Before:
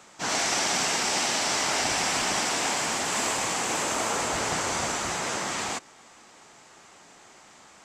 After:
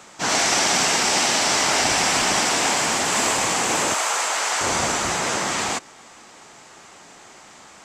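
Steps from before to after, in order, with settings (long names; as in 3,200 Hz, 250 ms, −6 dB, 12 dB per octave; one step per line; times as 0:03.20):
0:03.94–0:04.61: high-pass filter 760 Hz 12 dB per octave
level +6.5 dB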